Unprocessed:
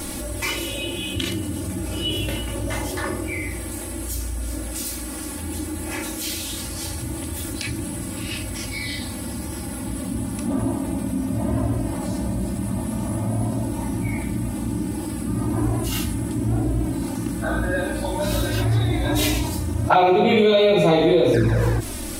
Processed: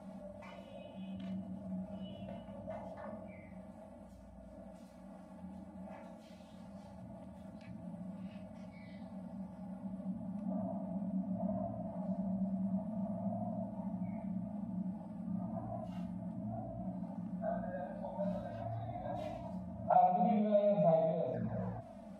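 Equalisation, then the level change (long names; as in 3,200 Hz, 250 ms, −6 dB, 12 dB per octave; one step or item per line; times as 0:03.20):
pair of resonant band-passes 360 Hz, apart 1.8 octaves
−6.0 dB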